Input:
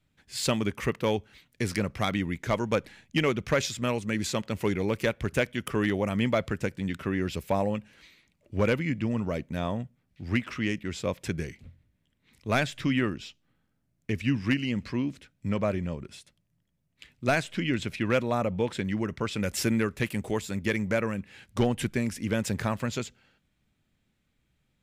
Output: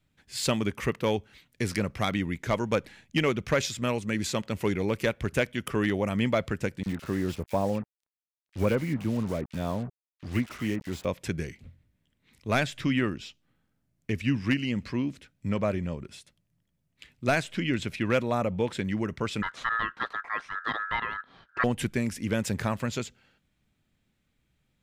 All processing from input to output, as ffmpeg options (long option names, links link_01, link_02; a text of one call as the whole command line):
ffmpeg -i in.wav -filter_complex "[0:a]asettb=1/sr,asplit=3[link_01][link_02][link_03];[link_01]atrim=end=6.834[link_04];[link_02]atrim=start=6.83:end=11.05,asetpts=PTS-STARTPTS,afade=type=in:duration=0.004:curve=qsin,afade=type=out:start_time=4.216:duration=0.004:curve=qsin,highshelf=frequency=2200:gain=-6,acrusher=bits=6:mix=0:aa=0.5,acrossover=split=2000[link_05][link_06];[link_05]adelay=30[link_07];[link_07][link_06]amix=inputs=2:normalize=0,atrim=end_sample=186102[link_08];[link_03]atrim=start=11.046[link_09];[link_04][link_08]acrossfade=duration=0.004:curve1=hsin:curve2=qsin[link_10];[link_10][link_09]acrossfade=duration=0.004:curve1=qsin:curve2=hsin,asettb=1/sr,asplit=3[link_11][link_12][link_13];[link_11]atrim=end=19.424[link_14];[link_12]atrim=start=19.42:end=21.64,asetpts=PTS-STARTPTS,afade=type=in:duration=0.004:curve=qsin,afade=type=out:start_time=2.216:duration=0.004:curve=qsin,aeval=exprs='val(0)*sin(2*PI*1500*n/s)':channel_layout=same,lowpass=2700[link_15];[link_13]atrim=start=21.636[link_16];[link_14][link_15]acrossfade=duration=0.004:curve1=hsin:curve2=qsin[link_17];[link_17][link_16]acrossfade=duration=0.004:curve1=qsin:curve2=hsin" out.wav